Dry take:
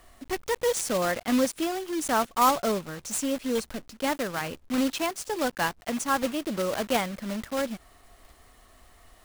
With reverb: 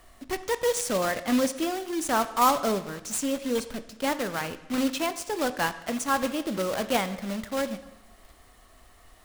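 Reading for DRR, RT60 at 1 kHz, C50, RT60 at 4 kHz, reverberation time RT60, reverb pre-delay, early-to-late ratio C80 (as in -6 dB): 11.0 dB, 1.0 s, 14.0 dB, 0.90 s, 0.95 s, 5 ms, 15.5 dB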